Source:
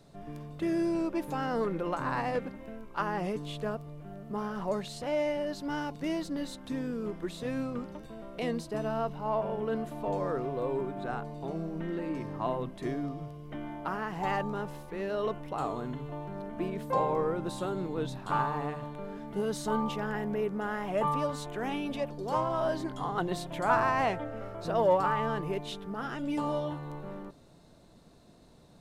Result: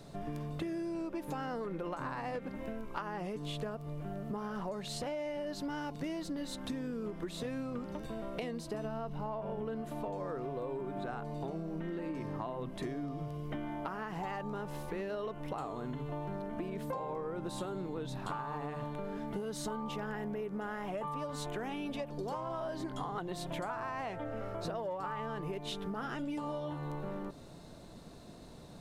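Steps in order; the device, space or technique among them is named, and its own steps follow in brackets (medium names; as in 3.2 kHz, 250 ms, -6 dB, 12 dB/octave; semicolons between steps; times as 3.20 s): 8.85–9.82 s: bass shelf 190 Hz +7 dB; serial compression, leveller first (compression 3:1, threshold -32 dBFS, peak gain reduction 9 dB; compression 6:1, threshold -42 dBFS, peak gain reduction 13 dB); trim +6 dB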